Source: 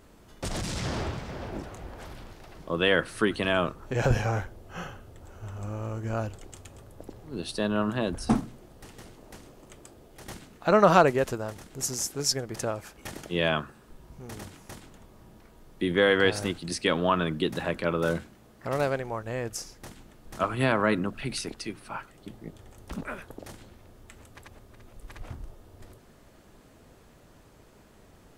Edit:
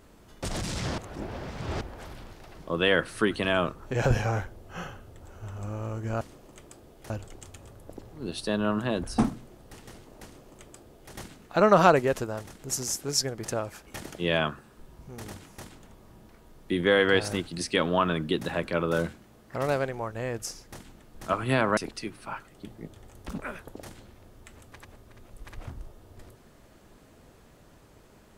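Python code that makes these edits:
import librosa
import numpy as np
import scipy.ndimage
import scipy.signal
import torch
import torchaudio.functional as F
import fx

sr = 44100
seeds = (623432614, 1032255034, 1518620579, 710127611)

y = fx.edit(x, sr, fx.reverse_span(start_s=0.98, length_s=0.83),
    fx.duplicate(start_s=9.35, length_s=0.89, to_s=6.21),
    fx.cut(start_s=20.88, length_s=0.52), tone=tone)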